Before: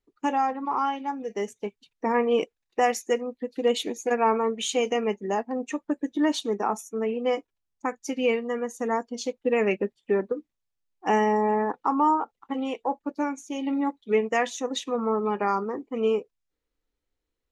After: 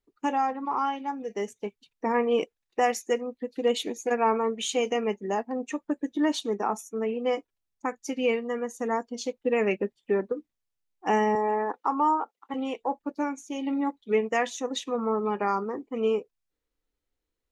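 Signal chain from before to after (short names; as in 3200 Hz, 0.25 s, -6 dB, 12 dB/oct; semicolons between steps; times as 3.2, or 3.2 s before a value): 11.35–12.54 HPF 300 Hz 12 dB/oct; gain -1.5 dB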